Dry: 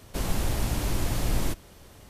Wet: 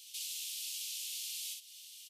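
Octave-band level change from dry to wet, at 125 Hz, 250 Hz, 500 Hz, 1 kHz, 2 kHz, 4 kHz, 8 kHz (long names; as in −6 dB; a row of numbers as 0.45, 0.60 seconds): below −40 dB, below −40 dB, below −40 dB, below −40 dB, −13.0 dB, −1.0 dB, −1.5 dB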